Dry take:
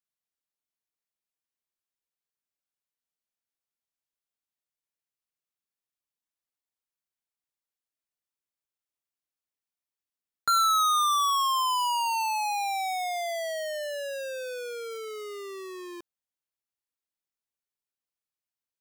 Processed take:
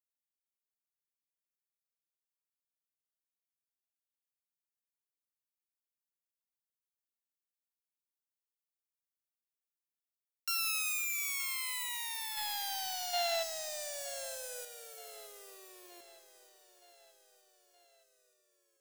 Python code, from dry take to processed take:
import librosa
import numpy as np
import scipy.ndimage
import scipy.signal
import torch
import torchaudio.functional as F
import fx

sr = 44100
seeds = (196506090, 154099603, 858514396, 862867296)

y = fx.self_delay(x, sr, depth_ms=0.27)
y = librosa.effects.preemphasis(y, coef=0.8, zi=[0.0])
y = fx.rev_plate(y, sr, seeds[0], rt60_s=4.6, hf_ratio=0.85, predelay_ms=0, drr_db=13.5)
y = fx.leveller(y, sr, passes=2, at=(12.37, 14.65))
y = fx.spec_box(y, sr, start_s=13.14, length_s=0.29, low_hz=610.0, high_hz=4300.0, gain_db=10)
y = fx.echo_feedback(y, sr, ms=921, feedback_pct=58, wet_db=-17.0)
y = y * 10.0 ** (-6.5 / 20.0)